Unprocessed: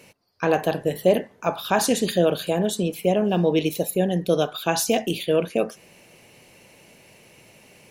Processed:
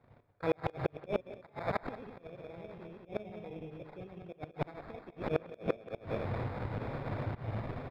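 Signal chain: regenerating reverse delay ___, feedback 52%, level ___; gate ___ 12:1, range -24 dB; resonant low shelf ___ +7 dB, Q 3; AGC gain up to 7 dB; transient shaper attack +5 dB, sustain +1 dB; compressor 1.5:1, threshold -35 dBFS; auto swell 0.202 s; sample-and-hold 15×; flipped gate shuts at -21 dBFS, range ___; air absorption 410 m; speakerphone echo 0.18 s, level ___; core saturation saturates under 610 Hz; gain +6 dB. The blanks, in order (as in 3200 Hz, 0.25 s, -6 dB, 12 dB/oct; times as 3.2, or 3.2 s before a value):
0.103 s, 0 dB, -47 dBFS, 150 Hz, -28 dB, -17 dB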